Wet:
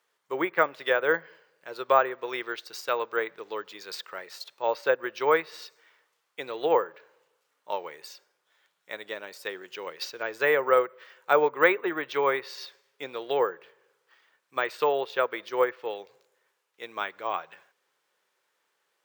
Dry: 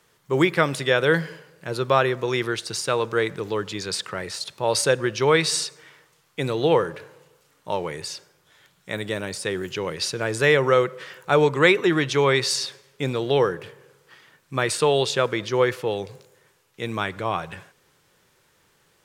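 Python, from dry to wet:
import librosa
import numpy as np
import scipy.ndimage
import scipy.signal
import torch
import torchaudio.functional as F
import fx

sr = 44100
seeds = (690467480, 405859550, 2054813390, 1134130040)

y = fx.env_lowpass_down(x, sr, base_hz=1800.0, full_db=-16.0)
y = scipy.signal.sosfilt(scipy.signal.butter(2, 520.0, 'highpass', fs=sr, output='sos'), y)
y = fx.high_shelf(y, sr, hz=4300.0, db=-5.0)
y = np.repeat(y[::2], 2)[:len(y)]
y = fx.upward_expand(y, sr, threshold_db=-40.0, expansion=1.5)
y = y * librosa.db_to_amplitude(1.5)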